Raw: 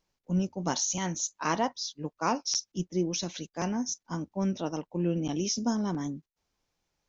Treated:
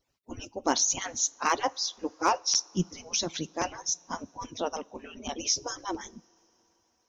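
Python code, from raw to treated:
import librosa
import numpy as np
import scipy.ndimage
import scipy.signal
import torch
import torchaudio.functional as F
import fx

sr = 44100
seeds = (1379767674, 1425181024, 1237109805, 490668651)

y = fx.hpss_only(x, sr, part='percussive')
y = fx.rev_double_slope(y, sr, seeds[0], early_s=0.3, late_s=4.6, knee_db=-20, drr_db=19.0)
y = np.clip(y, -10.0 ** (-17.5 / 20.0), 10.0 ** (-17.5 / 20.0))
y = y * librosa.db_to_amplitude(5.0)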